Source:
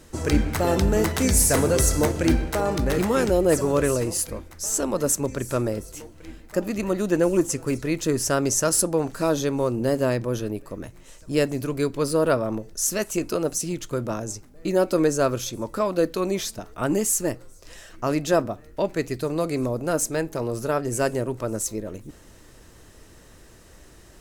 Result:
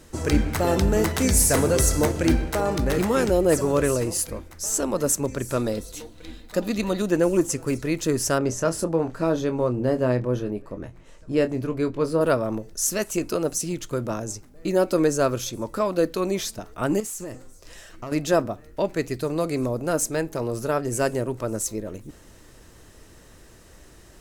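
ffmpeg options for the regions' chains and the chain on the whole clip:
-filter_complex "[0:a]asettb=1/sr,asplit=3[a][b][c];[a]atrim=end=5.574[d];[b]atrim=start=5.57:end=7.02,asetpts=PTS-STARTPTS,afade=t=in:d=0.004:c=qsin,afade=t=out:st=1.446:d=0.004:c=qsin,equalizer=f=3.8k:t=o:w=0.42:g=12.5,aecho=1:1:4.1:0.32,atrim=end_sample=63945[e];[c]atrim=start=7.016[f];[d][e]acrossfade=d=0.004:c1=hsin:c2=qsin[g];[g][f]acrossfade=d=0.004:c1=qsin:c2=hsin,asettb=1/sr,asplit=3[h][i][j];[h]atrim=end=8.384[k];[i]atrim=start=8.38:end=12.21,asetpts=PTS-STARTPTS,afade=t=in:d=0.004:c=qsin,afade=t=out:st=3.826:d=0.004:c=qsin,lowpass=f=1.9k:p=1,asplit=2[l][m];[m]adelay=24,volume=-9dB[n];[l][n]amix=inputs=2:normalize=0,atrim=end_sample=168903[o];[j]atrim=start=12.206[p];[k][o]acrossfade=d=0.004:c1=hsin:c2=qsin[q];[q][p]acrossfade=d=0.004:c1=qsin:c2=hsin,asettb=1/sr,asplit=3[r][s][t];[r]atrim=end=17.004[u];[s]atrim=start=17:end=18.12,asetpts=PTS-STARTPTS,afade=t=in:d=0.004:c=qsin,afade=t=out:st=1.116:d=0.004:c=qsin,bandreject=f=254.5:t=h:w=4,bandreject=f=509:t=h:w=4,bandreject=f=763.5:t=h:w=4,bandreject=f=1.018k:t=h:w=4,bandreject=f=1.2725k:t=h:w=4,bandreject=f=1.527k:t=h:w=4,bandreject=f=1.7815k:t=h:w=4,bandreject=f=2.036k:t=h:w=4,bandreject=f=2.2905k:t=h:w=4,bandreject=f=2.545k:t=h:w=4,bandreject=f=2.7995k:t=h:w=4,bandreject=f=3.054k:t=h:w=4,bandreject=f=3.3085k:t=h:w=4,bandreject=f=3.563k:t=h:w=4,bandreject=f=3.8175k:t=h:w=4,bandreject=f=4.072k:t=h:w=4,bandreject=f=4.3265k:t=h:w=4,bandreject=f=4.581k:t=h:w=4,bandreject=f=4.8355k:t=h:w=4,bandreject=f=5.09k:t=h:w=4,bandreject=f=5.3445k:t=h:w=4,bandreject=f=5.599k:t=h:w=4,bandreject=f=5.8535k:t=h:w=4,bandreject=f=6.108k:t=h:w=4,bandreject=f=6.3625k:t=h:w=4,bandreject=f=6.617k:t=h:w=4,bandreject=f=6.8715k:t=h:w=4,bandreject=f=7.126k:t=h:w=4,bandreject=f=7.3805k:t=h:w=4,bandreject=f=7.635k:t=h:w=4,bandreject=f=7.8895k:t=h:w=4,bandreject=f=8.144k:t=h:w=4,bandreject=f=8.3985k:t=h:w=4,bandreject=f=8.653k:t=h:w=4,bandreject=f=8.9075k:t=h:w=4,bandreject=f=9.162k:t=h:w=4,acompressor=threshold=-27dB:ratio=12:attack=3.2:release=140:knee=1:detection=peak,aeval=exprs='(tanh(20*val(0)+0.15)-tanh(0.15))/20':c=same[v];[t]atrim=start=18.116[w];[u][v]acrossfade=d=0.004:c1=hsin:c2=qsin[x];[x][w]acrossfade=d=0.004:c1=qsin:c2=hsin"

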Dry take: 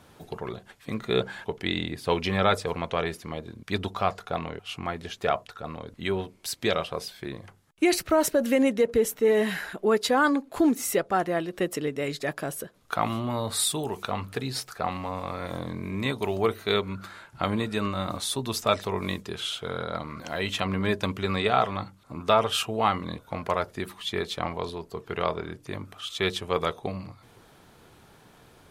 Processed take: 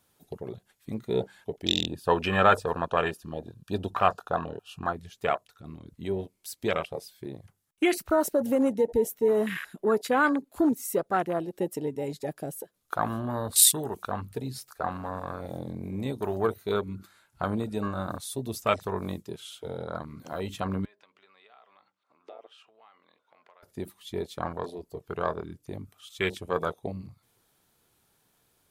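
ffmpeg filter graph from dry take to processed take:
-filter_complex "[0:a]asettb=1/sr,asplit=3[a][b][c];[a]atrim=end=1.654[d];[b]atrim=start=1.65:end=4.93,asetpts=PTS-STARTPTS,afade=t=in:d=0.004:c=qsin,afade=t=out:st=3.276:d=0.004:c=qsin,asuperstop=centerf=2100:order=12:qfactor=4,equalizer=f=1.4k:w=0.38:g=5.5[e];[c]atrim=start=4.926[f];[d][e]acrossfade=d=0.004:c1=hsin:c2=qsin[g];[g][f]acrossfade=d=0.004:c1=qsin:c2=hsin,asettb=1/sr,asplit=3[h][i][j];[h]atrim=end=20.854[k];[i]atrim=start=20.85:end=23.63,asetpts=PTS-STARTPTS,afade=t=in:d=0.004:c=qsin,afade=t=out:st=2.776:d=0.004:c=qsin,acompressor=threshold=-35dB:ratio=5:attack=3.2:release=140:knee=1:detection=peak,highpass=510,lowpass=2.9k[l];[j]atrim=start=23.626[m];[k][l]acrossfade=d=0.004:c1=hsin:c2=qsin[n];[n][m]acrossfade=d=0.004:c1=qsin:c2=hsin,afwtdn=0.0355,aemphasis=mode=production:type=75kf,volume=-2dB"

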